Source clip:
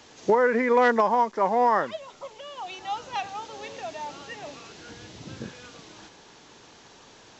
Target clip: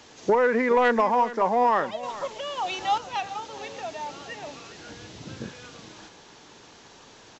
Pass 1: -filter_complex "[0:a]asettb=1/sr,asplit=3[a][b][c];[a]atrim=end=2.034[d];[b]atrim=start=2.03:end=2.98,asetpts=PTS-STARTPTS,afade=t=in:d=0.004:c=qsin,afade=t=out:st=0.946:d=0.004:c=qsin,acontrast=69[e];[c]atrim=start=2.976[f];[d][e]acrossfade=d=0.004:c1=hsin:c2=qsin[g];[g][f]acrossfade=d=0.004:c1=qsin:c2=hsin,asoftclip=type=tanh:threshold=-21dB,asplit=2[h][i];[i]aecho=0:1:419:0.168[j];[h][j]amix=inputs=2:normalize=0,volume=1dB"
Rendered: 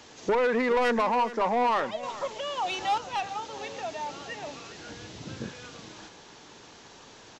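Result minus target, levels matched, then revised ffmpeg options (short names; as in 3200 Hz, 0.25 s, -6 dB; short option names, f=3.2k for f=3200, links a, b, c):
soft clip: distortion +11 dB
-filter_complex "[0:a]asettb=1/sr,asplit=3[a][b][c];[a]atrim=end=2.034[d];[b]atrim=start=2.03:end=2.98,asetpts=PTS-STARTPTS,afade=t=in:d=0.004:c=qsin,afade=t=out:st=0.946:d=0.004:c=qsin,acontrast=69[e];[c]atrim=start=2.976[f];[d][e]acrossfade=d=0.004:c1=hsin:c2=qsin[g];[g][f]acrossfade=d=0.004:c1=qsin:c2=hsin,asoftclip=type=tanh:threshold=-12dB,asplit=2[h][i];[i]aecho=0:1:419:0.168[j];[h][j]amix=inputs=2:normalize=0,volume=1dB"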